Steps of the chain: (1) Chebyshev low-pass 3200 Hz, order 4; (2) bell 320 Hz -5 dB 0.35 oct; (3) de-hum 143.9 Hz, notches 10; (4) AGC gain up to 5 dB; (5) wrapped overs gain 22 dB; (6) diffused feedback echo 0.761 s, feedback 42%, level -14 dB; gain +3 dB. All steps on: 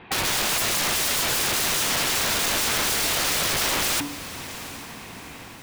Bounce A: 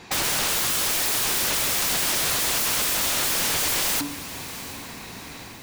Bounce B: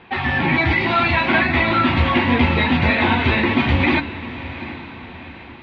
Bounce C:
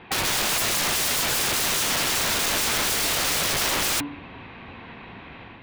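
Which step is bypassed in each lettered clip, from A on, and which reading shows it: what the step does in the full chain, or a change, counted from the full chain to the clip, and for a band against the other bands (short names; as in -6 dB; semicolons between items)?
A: 1, 8 kHz band +2.5 dB; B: 5, crest factor change +6.0 dB; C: 6, echo-to-direct -13.0 dB to none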